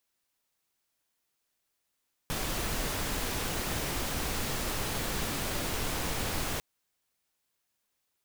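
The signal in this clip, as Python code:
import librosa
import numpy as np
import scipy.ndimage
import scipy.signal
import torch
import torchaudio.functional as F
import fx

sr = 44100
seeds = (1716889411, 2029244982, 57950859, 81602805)

y = fx.noise_colour(sr, seeds[0], length_s=4.3, colour='pink', level_db=-32.5)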